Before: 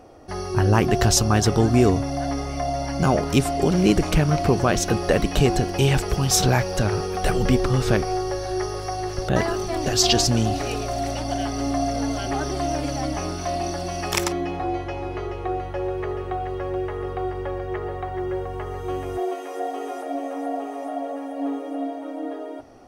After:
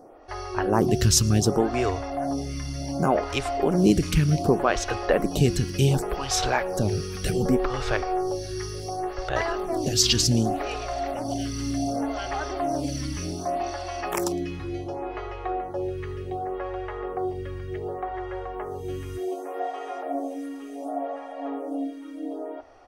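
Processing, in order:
slap from a distant wall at 19 metres, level −25 dB
phaser with staggered stages 0.67 Hz

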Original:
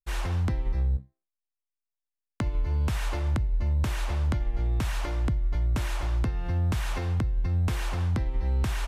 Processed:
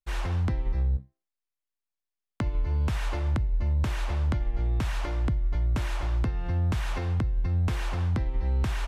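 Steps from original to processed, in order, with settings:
high-shelf EQ 7,400 Hz −8.5 dB

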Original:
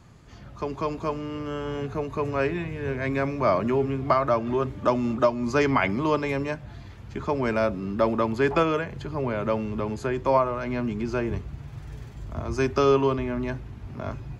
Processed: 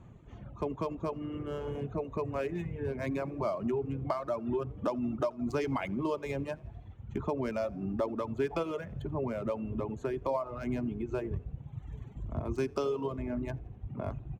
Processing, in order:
adaptive Wiener filter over 9 samples
downward compressor 3 to 1, threshold −28 dBFS, peak gain reduction 10 dB
parametric band 1,600 Hz −7.5 dB 1.3 octaves
echo with shifted repeats 84 ms, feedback 63%, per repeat +35 Hz, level −16 dB
reverb reduction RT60 1.9 s

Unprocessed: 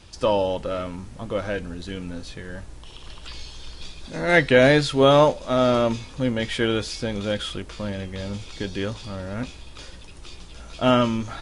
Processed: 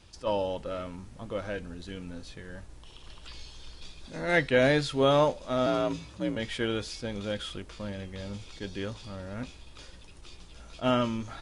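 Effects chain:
0:05.66–0:06.36: frequency shifter +49 Hz
level that may rise only so fast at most 360 dB per second
level −7.5 dB

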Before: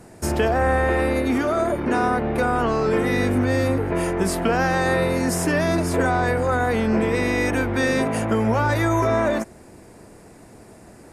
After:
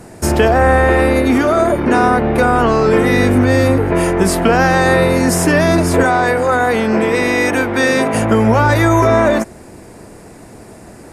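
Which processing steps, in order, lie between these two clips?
0:06.03–0:08.14: high-pass filter 260 Hz 6 dB per octave
level +8.5 dB

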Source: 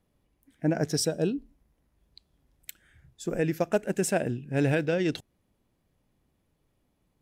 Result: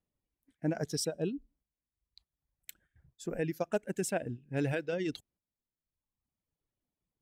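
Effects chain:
noise gate −59 dBFS, range −9 dB
reverb reduction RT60 1.2 s
level −6 dB

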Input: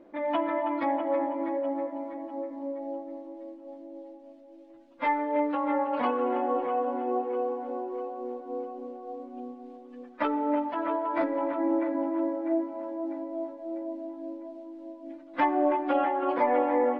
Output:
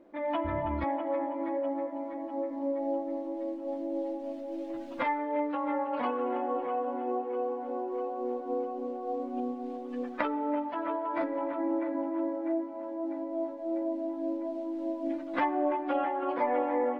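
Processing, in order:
0:00.44–0:00.84: sub-octave generator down 2 octaves, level +3 dB
camcorder AGC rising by 6.1 dB per second
level −4 dB

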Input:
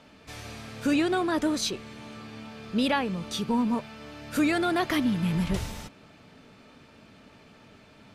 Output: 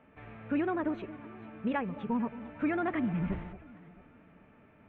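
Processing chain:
inverse Chebyshev low-pass filter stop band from 4,600 Hz, stop band 40 dB
delay that swaps between a low-pass and a high-pass 371 ms, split 850 Hz, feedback 60%, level −14 dB
phase-vocoder stretch with locked phases 0.6×
level −5 dB

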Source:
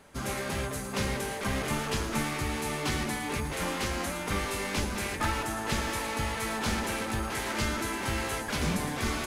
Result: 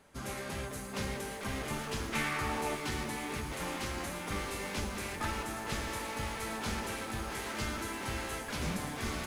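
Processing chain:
0:02.12–0:02.74: parametric band 2,800 Hz → 530 Hz +9.5 dB 1.8 octaves
feedback echo at a low word length 513 ms, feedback 80%, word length 8 bits, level −11 dB
level −6.5 dB

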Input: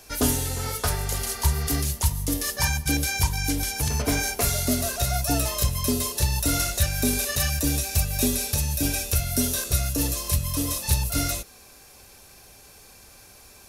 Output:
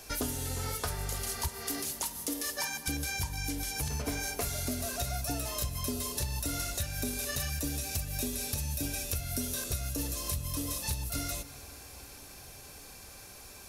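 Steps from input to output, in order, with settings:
0:01.48–0:02.88: high-pass filter 230 Hz 24 dB per octave
downward compressor 5 to 1, threshold −32 dBFS, peak gain reduction 14.5 dB
convolution reverb RT60 5.4 s, pre-delay 93 ms, DRR 15 dB

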